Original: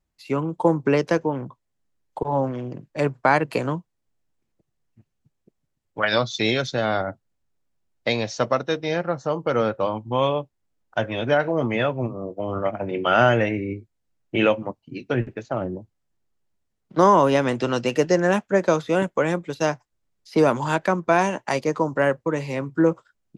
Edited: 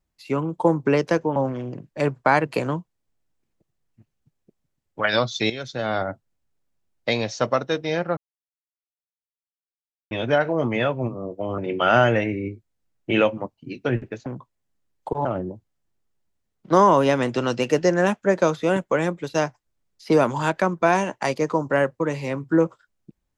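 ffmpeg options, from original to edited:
-filter_complex "[0:a]asplit=8[s0][s1][s2][s3][s4][s5][s6][s7];[s0]atrim=end=1.362[s8];[s1]atrim=start=2.348:end=6.49,asetpts=PTS-STARTPTS,afade=t=out:st=4.138:d=0.004:c=hsin:silence=0.211349[s9];[s2]atrim=start=6.49:end=9.16,asetpts=PTS-STARTPTS,afade=t=in:d=0.55:silence=0.211349,afade=t=out:st=2.666:d=0.004:c=hsin[s10];[s3]atrim=start=9.16:end=11.1,asetpts=PTS-STARTPTS,volume=0[s11];[s4]atrim=start=11.1:end=12.572,asetpts=PTS-STARTPTS,afade=t=in:d=0.004:c=hsin[s12];[s5]atrim=start=12.828:end=15.512[s13];[s6]atrim=start=1.358:end=2.352[s14];[s7]atrim=start=15.508[s15];[s9][s10][s11][s12]concat=n=4:v=0:a=1[s16];[s8][s16]acrossfade=d=0.004:c1=hsin:c2=hsin[s17];[s17][s13]acrossfade=d=0.004:c1=hsin:c2=hsin[s18];[s18][s14]acrossfade=d=0.004:c1=hsin:c2=hsin[s19];[s19][s15]acrossfade=d=0.004:c1=hsin:c2=hsin"

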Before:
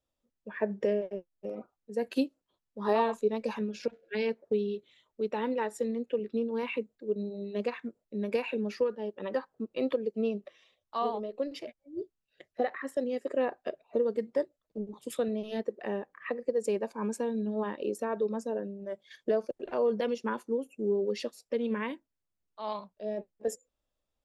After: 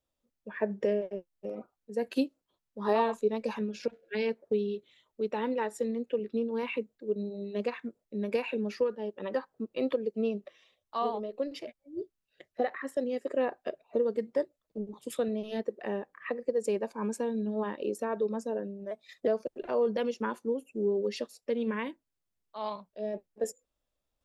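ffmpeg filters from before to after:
-filter_complex "[0:a]asplit=3[s0][s1][s2];[s0]atrim=end=18.914[s3];[s1]atrim=start=18.91:end=19.31,asetpts=PTS-STARTPTS,asetrate=48510,aresample=44100,atrim=end_sample=16036,asetpts=PTS-STARTPTS[s4];[s2]atrim=start=19.306[s5];[s3][s4]acrossfade=d=0.004:c1=hsin:c2=hsin[s6];[s6][s5]acrossfade=d=0.004:c1=hsin:c2=hsin"

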